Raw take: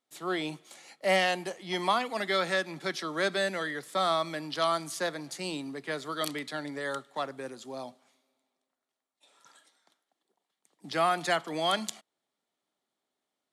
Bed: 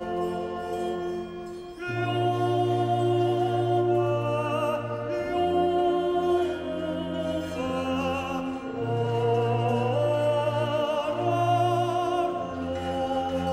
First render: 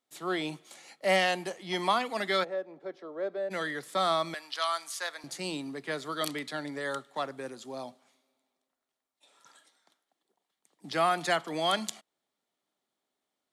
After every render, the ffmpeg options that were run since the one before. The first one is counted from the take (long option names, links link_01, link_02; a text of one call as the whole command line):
ffmpeg -i in.wav -filter_complex "[0:a]asplit=3[link_01][link_02][link_03];[link_01]afade=type=out:start_time=2.43:duration=0.02[link_04];[link_02]bandpass=frequency=510:width_type=q:width=2.4,afade=type=in:start_time=2.43:duration=0.02,afade=type=out:start_time=3.5:duration=0.02[link_05];[link_03]afade=type=in:start_time=3.5:duration=0.02[link_06];[link_04][link_05][link_06]amix=inputs=3:normalize=0,asettb=1/sr,asplit=3[link_07][link_08][link_09];[link_07]atrim=end=4.344[link_10];[link_08]atrim=start=4.34:end=5.24,asetpts=PTS-STARTPTS,afade=type=in:duration=0.004:curve=qsin,afade=type=out:start_time=0.896:duration=0.004:curve=qsin,highpass=950[link_11];[link_09]atrim=start=5.236[link_12];[link_10][link_11]acrossfade=duration=0.004:curve1=hsin:curve2=qsin[link_13];[link_13][link_12]acrossfade=duration=0.004:curve1=qsin:curve2=hsin" out.wav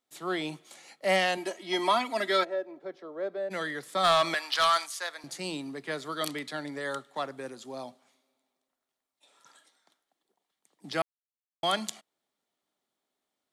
ffmpeg -i in.wav -filter_complex "[0:a]asettb=1/sr,asplit=3[link_01][link_02][link_03];[link_01]atrim=end=1.374[link_04];[link_02]atrim=start=1.37:end=2.8,asetpts=PTS-STARTPTS,afade=type=in:duration=0.004:curve=qsin,afade=type=out:start_time=1.426:duration=0.004:curve=qsin,aecho=1:1:3.1:0.72,atrim=end_sample=63063[link_05];[link_03]atrim=start=2.796[link_06];[link_04][link_05]acrossfade=duration=0.004:curve1=hsin:curve2=qsin[link_07];[link_07][link_06]acrossfade=duration=0.004:curve1=qsin:curve2=hsin,asplit=3[link_08][link_09][link_10];[link_08]afade=type=out:start_time=4.03:duration=0.02[link_11];[link_09]asplit=2[link_12][link_13];[link_13]highpass=frequency=720:poles=1,volume=17dB,asoftclip=type=tanh:threshold=-14.5dB[link_14];[link_12][link_14]amix=inputs=2:normalize=0,lowpass=frequency=6700:poles=1,volume=-6dB,afade=type=in:start_time=4.03:duration=0.02,afade=type=out:start_time=4.85:duration=0.02[link_15];[link_10]afade=type=in:start_time=4.85:duration=0.02[link_16];[link_11][link_15][link_16]amix=inputs=3:normalize=0,asplit=3[link_17][link_18][link_19];[link_17]atrim=end=11.02,asetpts=PTS-STARTPTS,afade=type=out:start_time=11.016:duration=0.004:curve=hsin[link_20];[link_18]atrim=start=11.02:end=11.63,asetpts=PTS-STARTPTS,volume=0[link_21];[link_19]atrim=start=11.63,asetpts=PTS-STARTPTS,afade=type=in:duration=0.004:curve=hsin[link_22];[link_20][link_21][link_22]concat=n=3:v=0:a=1" out.wav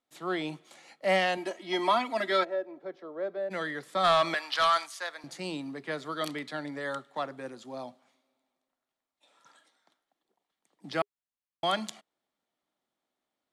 ffmpeg -i in.wav -af "aemphasis=mode=reproduction:type=cd,bandreject=frequency=410:width=13" out.wav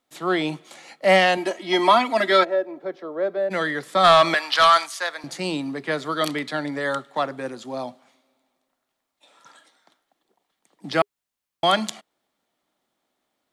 ffmpeg -i in.wav -af "volume=9.5dB" out.wav